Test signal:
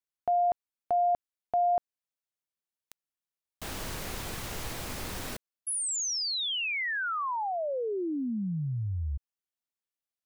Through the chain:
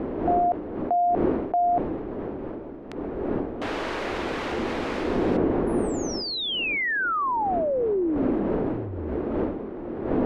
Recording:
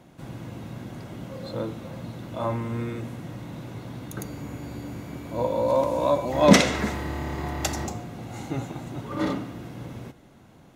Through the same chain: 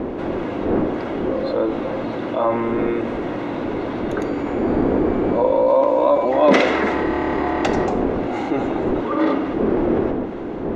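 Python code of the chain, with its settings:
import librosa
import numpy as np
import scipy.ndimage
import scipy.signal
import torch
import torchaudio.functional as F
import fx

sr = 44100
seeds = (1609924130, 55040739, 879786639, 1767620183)

y = fx.dmg_wind(x, sr, seeds[0], corner_hz=220.0, level_db=-29.0)
y = scipy.signal.sosfilt(scipy.signal.butter(2, 2500.0, 'lowpass', fs=sr, output='sos'), y)
y = fx.low_shelf_res(y, sr, hz=220.0, db=-13.5, q=1.5)
y = fx.env_flatten(y, sr, amount_pct=50)
y = y * librosa.db_to_amplitude(1.5)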